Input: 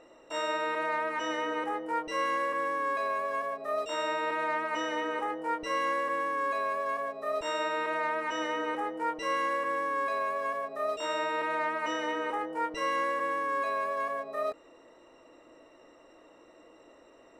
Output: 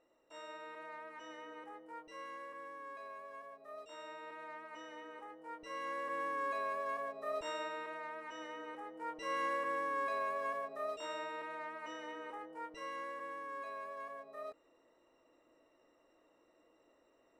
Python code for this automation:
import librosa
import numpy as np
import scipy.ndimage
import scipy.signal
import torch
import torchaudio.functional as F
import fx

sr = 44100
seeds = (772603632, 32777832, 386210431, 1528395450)

y = fx.gain(x, sr, db=fx.line((5.37, -18.0), (6.25, -7.0), (7.38, -7.0), (8.0, -14.5), (8.85, -14.5), (9.44, -6.0), (10.57, -6.0), (11.55, -14.0)))